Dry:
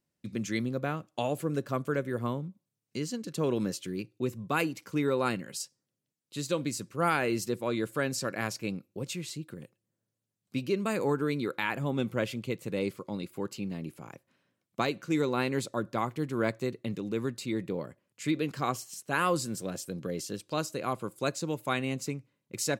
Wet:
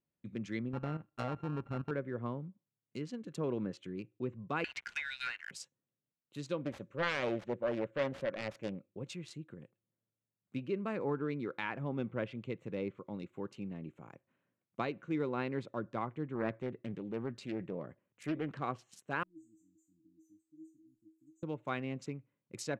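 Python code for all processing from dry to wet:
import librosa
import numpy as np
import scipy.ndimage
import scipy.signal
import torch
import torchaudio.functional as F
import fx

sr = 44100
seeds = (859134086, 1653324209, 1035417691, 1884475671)

y = fx.chain(x, sr, fx.sample_sort(block=32),
    fx.tilt_eq(slope=-2.5),
    fx.level_steps(step_db=10), at=(0.73, 1.91))
y = fx.chain(y, sr, fx.brickwall_highpass(low_hz=1400.0),
    fx.leveller(passes=3),
    fx.band_squash(depth_pct=100), at=(4.64, 5.51))
y = fx.chain(y, sr, fx.self_delay(depth_ms=0.65),
    fx.peak_eq(hz=560.0, db=13.0, octaves=0.23), at=(6.65, 8.89))
y = fx.chain(y, sr, fx.transient(attack_db=-1, sustain_db=3),
    fx.doppler_dist(depth_ms=0.32), at=(16.35, 18.61))
y = fx.chain(y, sr, fx.brickwall_bandstop(low_hz=340.0, high_hz=5900.0),
    fx.comb_fb(f0_hz=320.0, decay_s=0.36, harmonics='all', damping=0.0, mix_pct=100), at=(19.23, 21.43))
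y = fx.wiener(y, sr, points=9)
y = fx.env_lowpass_down(y, sr, base_hz=2700.0, full_db=-27.0)
y = y * librosa.db_to_amplitude(-6.5)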